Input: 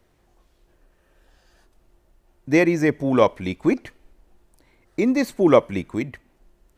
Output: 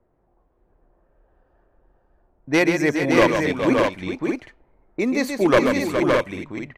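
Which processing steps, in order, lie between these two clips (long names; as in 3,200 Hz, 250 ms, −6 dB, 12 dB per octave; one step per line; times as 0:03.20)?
wavefolder on the positive side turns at −9.5 dBFS
low-pass that shuts in the quiet parts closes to 920 Hz, open at −18.5 dBFS
low-shelf EQ 440 Hz −7.5 dB
multi-tap delay 133/415/565/619 ms −6.5/−9/−4.5/−5.5 dB
one half of a high-frequency compander decoder only
level +2.5 dB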